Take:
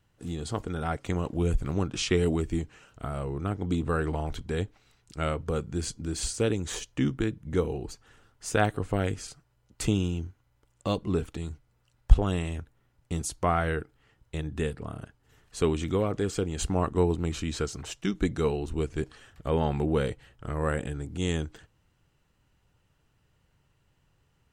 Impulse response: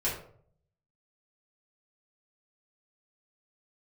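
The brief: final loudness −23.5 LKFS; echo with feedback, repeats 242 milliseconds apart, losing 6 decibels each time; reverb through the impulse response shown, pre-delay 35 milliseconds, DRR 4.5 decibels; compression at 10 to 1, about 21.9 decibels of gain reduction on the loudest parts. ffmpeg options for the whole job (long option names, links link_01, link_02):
-filter_complex "[0:a]acompressor=threshold=-33dB:ratio=10,aecho=1:1:242|484|726|968|1210|1452:0.501|0.251|0.125|0.0626|0.0313|0.0157,asplit=2[link_01][link_02];[1:a]atrim=start_sample=2205,adelay=35[link_03];[link_02][link_03]afir=irnorm=-1:irlink=0,volume=-12dB[link_04];[link_01][link_04]amix=inputs=2:normalize=0,volume=13dB"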